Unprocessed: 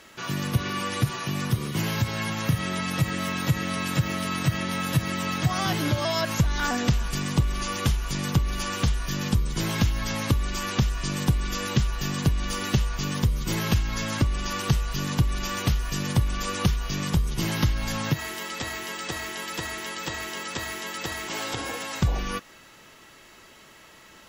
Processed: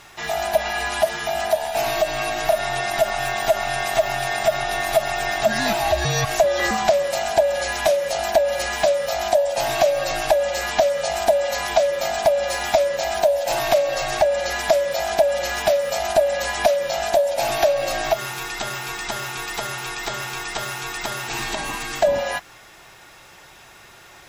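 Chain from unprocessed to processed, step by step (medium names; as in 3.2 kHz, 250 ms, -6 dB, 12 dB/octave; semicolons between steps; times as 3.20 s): split-band scrambler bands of 500 Hz; trim +4.5 dB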